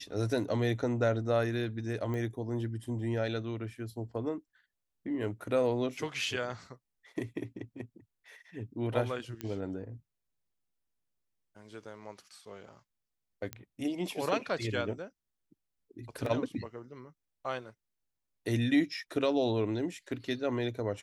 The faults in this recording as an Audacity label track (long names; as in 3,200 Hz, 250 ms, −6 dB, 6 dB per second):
2.140000	2.140000	click −26 dBFS
5.970000	5.970000	drop-out 3.2 ms
9.410000	9.410000	click −22 dBFS
13.530000	13.530000	click −21 dBFS
16.260000	16.260000	drop-out 2.9 ms